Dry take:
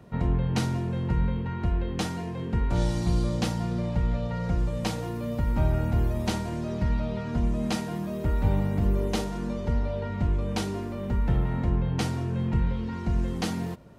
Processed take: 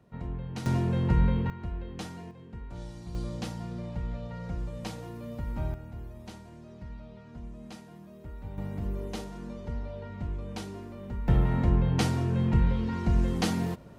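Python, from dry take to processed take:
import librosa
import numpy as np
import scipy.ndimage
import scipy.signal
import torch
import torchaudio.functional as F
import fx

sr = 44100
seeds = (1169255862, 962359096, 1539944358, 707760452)

y = fx.gain(x, sr, db=fx.steps((0.0, -11.0), (0.66, 2.0), (1.5, -9.5), (2.31, -16.0), (3.15, -8.5), (5.74, -17.0), (8.58, -9.0), (11.28, 1.5)))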